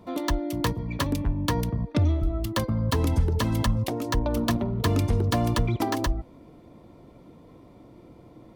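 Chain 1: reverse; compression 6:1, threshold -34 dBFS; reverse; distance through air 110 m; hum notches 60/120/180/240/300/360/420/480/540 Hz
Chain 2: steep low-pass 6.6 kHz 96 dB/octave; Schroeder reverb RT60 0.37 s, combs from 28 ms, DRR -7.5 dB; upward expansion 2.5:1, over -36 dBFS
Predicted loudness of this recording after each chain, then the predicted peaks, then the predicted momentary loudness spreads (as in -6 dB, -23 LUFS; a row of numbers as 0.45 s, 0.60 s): -39.0 LUFS, -26.0 LUFS; -26.0 dBFS, -5.5 dBFS; 14 LU, 11 LU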